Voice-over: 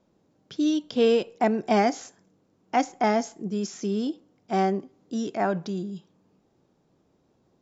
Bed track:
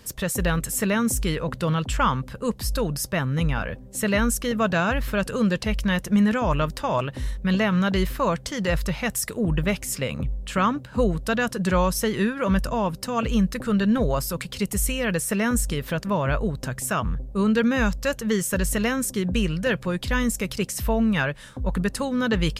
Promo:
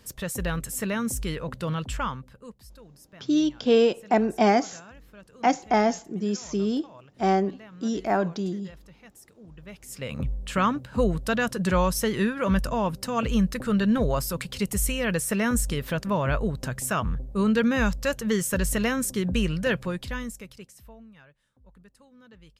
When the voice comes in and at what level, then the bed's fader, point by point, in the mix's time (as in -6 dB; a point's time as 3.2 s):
2.70 s, +1.5 dB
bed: 1.93 s -5.5 dB
2.77 s -25 dB
9.55 s -25 dB
10.2 s -1.5 dB
19.79 s -1.5 dB
21.14 s -30 dB